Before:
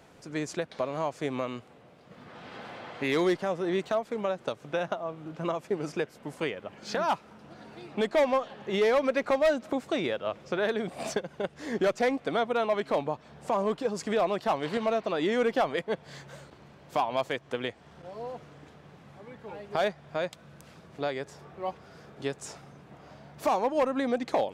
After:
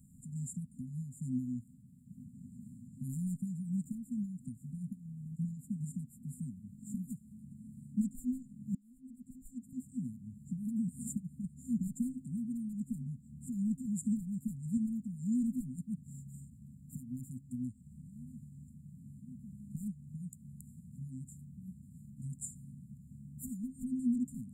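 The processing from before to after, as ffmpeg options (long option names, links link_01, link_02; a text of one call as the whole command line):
ffmpeg -i in.wav -filter_complex "[0:a]asplit=2[link_01][link_02];[link_01]atrim=end=8.75,asetpts=PTS-STARTPTS,afade=type=out:start_time=8.746:duration=0.004:curve=hsin[link_03];[link_02]atrim=start=8.75,asetpts=PTS-STARTPTS,afade=type=in:duration=1.68[link_04];[link_03][link_04]concat=n=2:v=0:a=1,afftfilt=real='re*(1-between(b*sr/4096,260,7000))':imag='im*(1-between(b*sr/4096,260,7000))':win_size=4096:overlap=0.75,volume=2.5dB" out.wav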